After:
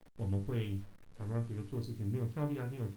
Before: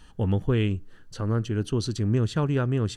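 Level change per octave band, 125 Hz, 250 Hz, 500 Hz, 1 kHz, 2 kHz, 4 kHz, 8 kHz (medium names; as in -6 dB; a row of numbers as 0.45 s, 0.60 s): -11.5 dB, -13.0 dB, -13.5 dB, -13.5 dB, -14.5 dB, -18.0 dB, under -15 dB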